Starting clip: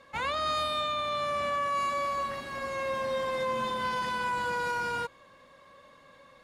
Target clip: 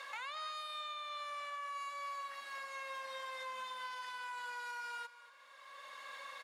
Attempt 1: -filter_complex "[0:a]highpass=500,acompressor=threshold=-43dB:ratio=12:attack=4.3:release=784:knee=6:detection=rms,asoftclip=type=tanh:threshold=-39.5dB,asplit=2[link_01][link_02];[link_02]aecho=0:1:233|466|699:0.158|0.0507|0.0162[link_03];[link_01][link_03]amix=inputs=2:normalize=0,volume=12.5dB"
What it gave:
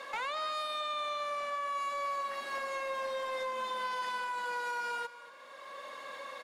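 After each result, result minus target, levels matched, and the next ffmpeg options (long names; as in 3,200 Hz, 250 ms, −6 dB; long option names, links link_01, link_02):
500 Hz band +7.0 dB; downward compressor: peak gain reduction −6.5 dB
-filter_complex "[0:a]highpass=1100,acompressor=threshold=-43dB:ratio=12:attack=4.3:release=784:knee=6:detection=rms,asoftclip=type=tanh:threshold=-39.5dB,asplit=2[link_01][link_02];[link_02]aecho=0:1:233|466|699:0.158|0.0507|0.0162[link_03];[link_01][link_03]amix=inputs=2:normalize=0,volume=12.5dB"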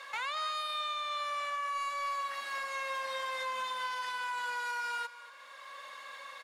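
downward compressor: peak gain reduction −8.5 dB
-filter_complex "[0:a]highpass=1100,acompressor=threshold=-52.5dB:ratio=12:attack=4.3:release=784:knee=6:detection=rms,asoftclip=type=tanh:threshold=-39.5dB,asplit=2[link_01][link_02];[link_02]aecho=0:1:233|466|699:0.158|0.0507|0.0162[link_03];[link_01][link_03]amix=inputs=2:normalize=0,volume=12.5dB"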